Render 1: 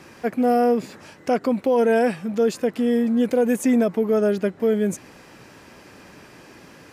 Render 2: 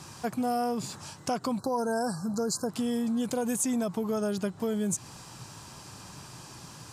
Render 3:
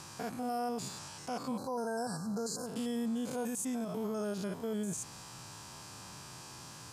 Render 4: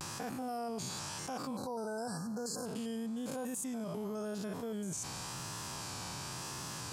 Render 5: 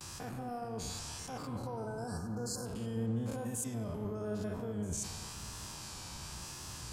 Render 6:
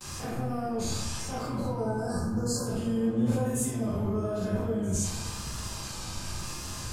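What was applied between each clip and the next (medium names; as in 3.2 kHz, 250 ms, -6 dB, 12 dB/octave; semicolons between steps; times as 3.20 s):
spectral selection erased 1.58–2.70 s, 1.7–3.9 kHz; graphic EQ 125/250/500/1000/2000/4000/8000 Hz +9/-6/-9/+6/-11/+4/+10 dB; compression 3:1, threshold -27 dBFS, peak gain reduction 6 dB
spectrogram pixelated in time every 100 ms; bass shelf 380 Hz -4.5 dB; peak limiter -28.5 dBFS, peak gain reduction 9 dB
vibrato 0.95 Hz 79 cents; level flattener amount 70%; trim -5 dB
octave divider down 1 oct, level 0 dB; spring tank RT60 2.5 s, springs 33/53 ms, chirp 45 ms, DRR 6 dB; three bands expanded up and down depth 70%; trim -2 dB
simulated room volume 83 m³, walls mixed, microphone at 2.1 m; trim -1.5 dB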